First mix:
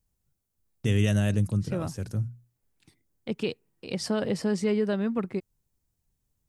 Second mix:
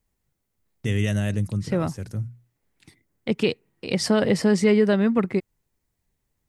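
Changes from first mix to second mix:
second voice +7.5 dB; master: add bell 2000 Hz +5.5 dB 0.29 oct

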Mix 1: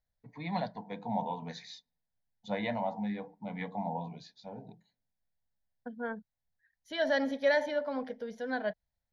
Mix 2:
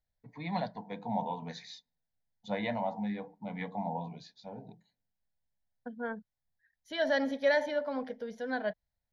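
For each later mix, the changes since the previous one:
none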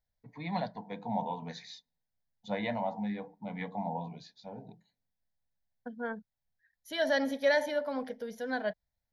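second voice: remove air absorption 85 m

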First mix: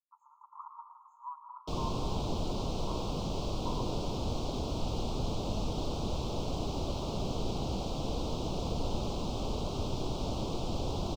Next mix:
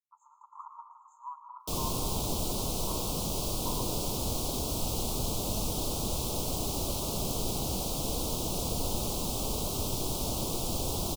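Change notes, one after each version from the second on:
master: remove air absorption 180 m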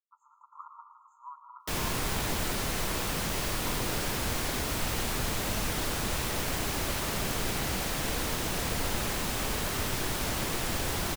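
speech -7.5 dB; master: remove Butterworth band-stop 1800 Hz, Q 0.72

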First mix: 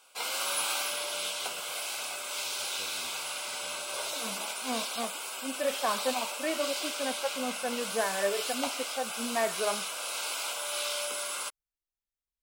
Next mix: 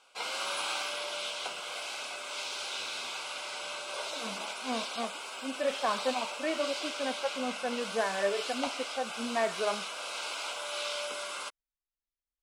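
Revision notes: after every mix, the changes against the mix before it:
first voice -6.5 dB; master: add air absorption 74 m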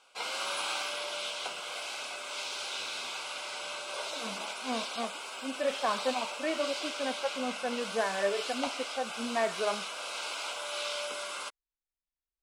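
none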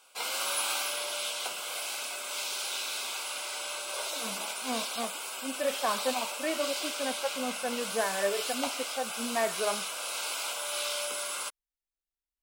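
first voice -10.5 dB; master: remove air absorption 74 m

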